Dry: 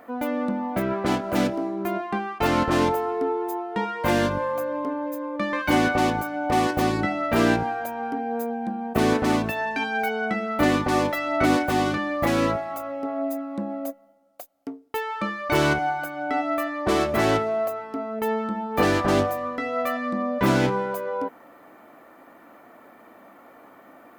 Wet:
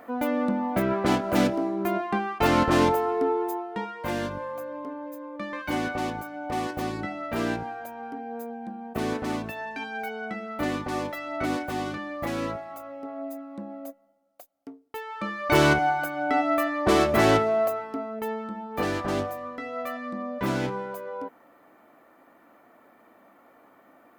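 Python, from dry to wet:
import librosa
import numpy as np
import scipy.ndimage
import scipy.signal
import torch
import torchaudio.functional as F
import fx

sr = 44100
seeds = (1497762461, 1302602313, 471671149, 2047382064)

y = fx.gain(x, sr, db=fx.line((3.41, 0.5), (3.95, -8.0), (15.05, -8.0), (15.53, 1.5), (17.73, 1.5), (18.36, -7.0)))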